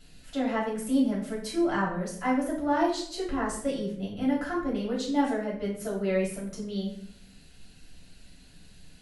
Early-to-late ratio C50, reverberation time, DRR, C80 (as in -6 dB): 5.0 dB, 0.65 s, -6.0 dB, 9.0 dB